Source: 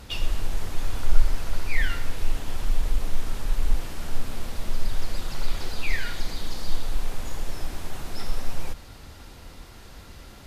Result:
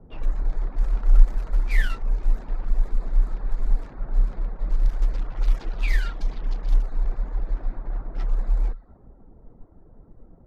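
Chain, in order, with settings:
adaptive Wiener filter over 15 samples
reverb reduction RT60 0.59 s
low-pass that shuts in the quiet parts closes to 500 Hz, open at −15 dBFS
frequency shifter −41 Hz

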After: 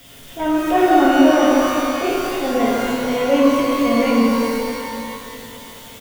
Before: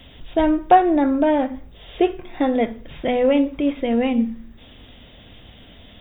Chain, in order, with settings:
low-shelf EQ 71 Hz −11 dB
comb filter 7.2 ms, depth 39%
in parallel at −8 dB: bit-depth reduction 6 bits, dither triangular
on the sum: transient designer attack −11 dB, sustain +6 dB
reverb with rising layers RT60 2.8 s, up +12 semitones, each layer −8 dB, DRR −6.5 dB
level −6 dB

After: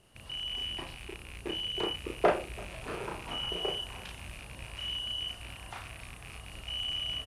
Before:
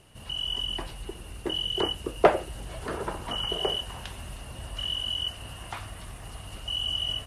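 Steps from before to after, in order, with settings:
loose part that buzzes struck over −39 dBFS, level −26 dBFS
double-tracking delay 34 ms −2 dB
single-tap delay 336 ms −22 dB
level −7.5 dB

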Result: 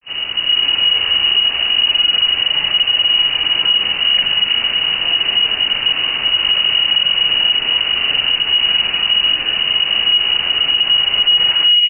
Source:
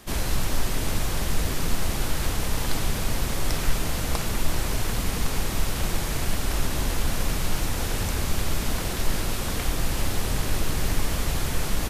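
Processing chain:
turntable brake at the end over 1.93 s
automatic gain control gain up to 7.5 dB
granular cloud 128 ms, grains 20 per second
soft clipping −7.5 dBFS, distortion −23 dB
double-tracking delay 44 ms −5 dB
flutter between parallel walls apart 10.4 metres, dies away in 0.32 s
voice inversion scrambler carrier 2,900 Hz
boost into a limiter +7 dB
level −5 dB

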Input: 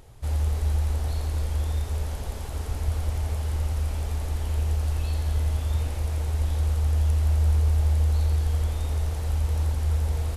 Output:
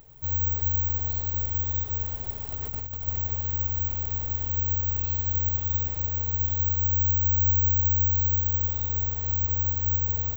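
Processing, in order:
0:02.52–0:03.08: compressor whose output falls as the input rises −31 dBFS, ratio −1
bad sample-rate conversion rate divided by 2×, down filtered, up zero stuff
level −5.5 dB

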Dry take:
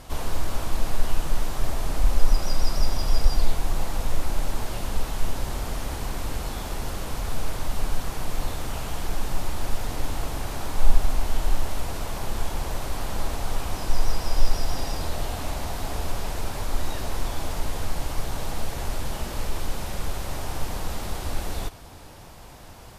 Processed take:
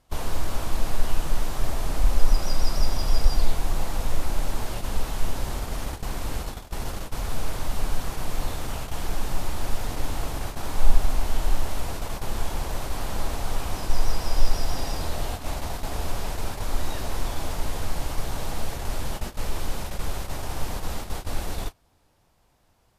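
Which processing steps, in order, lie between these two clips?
noise gate −28 dBFS, range −20 dB

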